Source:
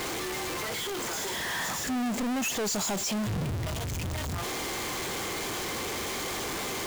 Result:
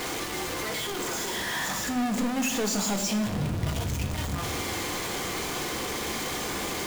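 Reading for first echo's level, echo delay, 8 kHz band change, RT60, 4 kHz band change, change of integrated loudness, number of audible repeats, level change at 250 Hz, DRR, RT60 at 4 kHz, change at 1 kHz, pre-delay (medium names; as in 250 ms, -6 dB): no echo, no echo, +1.0 dB, 1.1 s, +1.5 dB, +2.0 dB, no echo, +3.0 dB, 3.5 dB, 0.80 s, +2.0 dB, 4 ms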